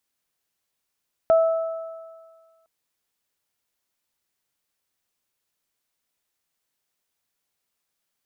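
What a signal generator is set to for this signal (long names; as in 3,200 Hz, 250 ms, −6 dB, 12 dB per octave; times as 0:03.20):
harmonic partials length 1.36 s, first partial 654 Hz, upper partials −15 dB, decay 1.63 s, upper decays 1.95 s, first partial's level −12 dB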